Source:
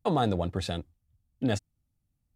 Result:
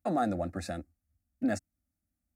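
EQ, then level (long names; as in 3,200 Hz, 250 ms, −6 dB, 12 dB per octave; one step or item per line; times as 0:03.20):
high-pass filter 59 Hz
phaser with its sweep stopped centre 650 Hz, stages 8
0.0 dB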